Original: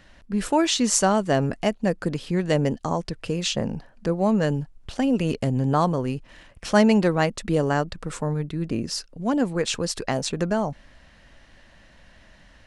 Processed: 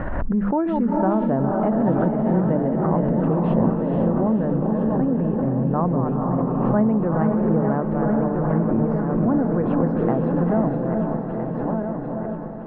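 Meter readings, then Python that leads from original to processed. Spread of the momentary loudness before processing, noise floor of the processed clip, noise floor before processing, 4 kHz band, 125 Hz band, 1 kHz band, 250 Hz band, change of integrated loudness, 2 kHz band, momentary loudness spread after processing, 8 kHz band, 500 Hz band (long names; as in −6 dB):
10 LU, −27 dBFS, −53 dBFS, below −25 dB, +5.0 dB, +1.5 dB, +5.5 dB, +2.5 dB, −7.0 dB, 5 LU, below −40 dB, +2.5 dB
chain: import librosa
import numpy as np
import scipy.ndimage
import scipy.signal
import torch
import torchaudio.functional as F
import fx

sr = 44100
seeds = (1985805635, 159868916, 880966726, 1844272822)

y = fx.reverse_delay_fb(x, sr, ms=657, feedback_pct=69, wet_db=-7.5)
y = scipy.signal.sosfilt(scipy.signal.butter(4, 1300.0, 'lowpass', fs=sr, output='sos'), y)
y = fx.hum_notches(y, sr, base_hz=50, count=5)
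y = fx.dynamic_eq(y, sr, hz=200.0, q=1.4, threshold_db=-35.0, ratio=4.0, max_db=6)
y = fx.rider(y, sr, range_db=4, speed_s=0.5)
y = fx.echo_diffused(y, sr, ms=470, feedback_pct=45, wet_db=-3.0)
y = fx.pre_swell(y, sr, db_per_s=23.0)
y = y * librosa.db_to_amplitude(-3.0)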